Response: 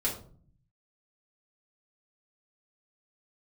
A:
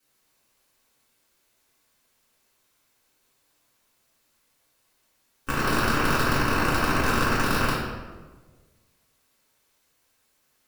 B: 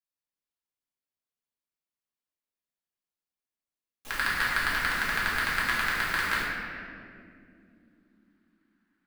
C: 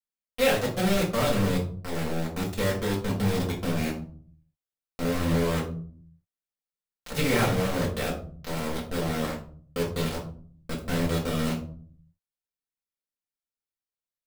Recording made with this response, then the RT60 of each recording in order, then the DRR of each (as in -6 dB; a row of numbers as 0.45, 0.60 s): C; 1.4 s, not exponential, 0.45 s; -10.0, -8.5, -6.0 dB